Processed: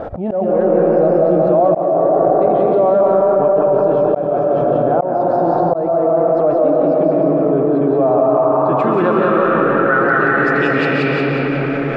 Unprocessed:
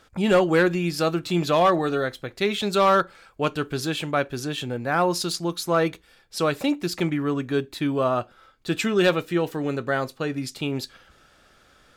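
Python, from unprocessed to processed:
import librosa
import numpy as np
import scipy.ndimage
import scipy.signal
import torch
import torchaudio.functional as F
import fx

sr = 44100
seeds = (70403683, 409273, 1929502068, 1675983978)

p1 = fx.high_shelf(x, sr, hz=5200.0, db=7.5)
p2 = fx.rev_freeverb(p1, sr, rt60_s=4.8, hf_ratio=0.35, predelay_ms=95, drr_db=-2.0)
p3 = fx.vibrato(p2, sr, rate_hz=3.4, depth_cents=41.0)
p4 = p3 + fx.echo_feedback(p3, sr, ms=181, feedback_pct=43, wet_db=-4.0, dry=0)
p5 = fx.filter_sweep_lowpass(p4, sr, from_hz=660.0, to_hz=2100.0, start_s=7.74, end_s=11.04, q=3.9)
p6 = fx.low_shelf(p5, sr, hz=73.0, db=-8.0)
p7 = fx.auto_swell(p6, sr, attack_ms=527.0)
p8 = fx.env_flatten(p7, sr, amount_pct=70)
y = p8 * librosa.db_to_amplitude(-4.5)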